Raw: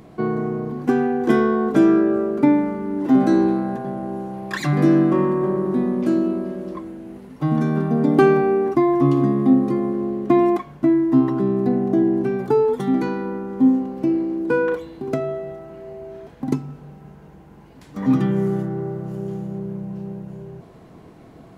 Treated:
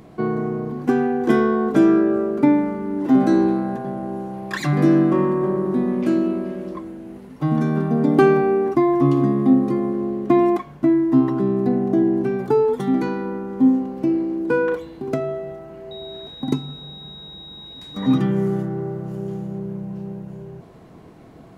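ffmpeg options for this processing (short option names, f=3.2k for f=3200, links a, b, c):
-filter_complex "[0:a]asettb=1/sr,asplit=3[a][b][c];[a]atrim=end=5.884[d];[b]atrim=start=5.88:end=6.68,asetpts=PTS-STARTPTS,afade=t=in:d=0.004:c=qsin,afade=t=out:st=0.796:d=0.004:c=qsin,equalizer=f=2.4k:w=1.5:g=5.5[e];[c]atrim=start=6.676[f];[d][e]acrossfade=d=0.004:c1=hsin:c2=qsin[g];[g][f]acrossfade=d=0.004:c1=qsin:c2=hsin,asettb=1/sr,asplit=3[h][i][j];[h]atrim=end=15.914[k];[i]atrim=start=15.91:end=18.18,asetpts=PTS-STARTPTS,afade=t=in:d=0.004:c=qsin,afade=t=out:st=2.266:d=0.004:c=qsin,aeval=exprs='val(0)+0.0141*sin(2*PI*3800*n/s)':c=same[l];[j]atrim=start=18.176[m];[k][l]acrossfade=d=0.004:c1=hsin:c2=qsin[n];[n][m]acrossfade=d=0.004:c1=qsin:c2=hsin"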